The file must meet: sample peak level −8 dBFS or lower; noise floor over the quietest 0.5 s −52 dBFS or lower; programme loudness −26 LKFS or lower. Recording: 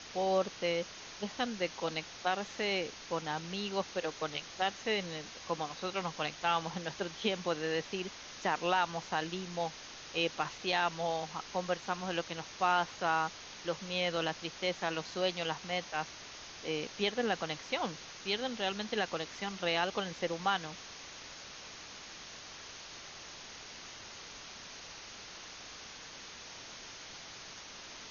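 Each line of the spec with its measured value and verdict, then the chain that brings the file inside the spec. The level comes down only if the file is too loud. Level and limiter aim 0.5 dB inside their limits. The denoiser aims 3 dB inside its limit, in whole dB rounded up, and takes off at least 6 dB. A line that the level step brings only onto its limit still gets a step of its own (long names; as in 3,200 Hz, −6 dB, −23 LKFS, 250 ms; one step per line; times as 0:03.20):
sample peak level −15.5 dBFS: in spec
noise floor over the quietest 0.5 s −49 dBFS: out of spec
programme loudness −36.5 LKFS: in spec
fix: broadband denoise 6 dB, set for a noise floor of −49 dBFS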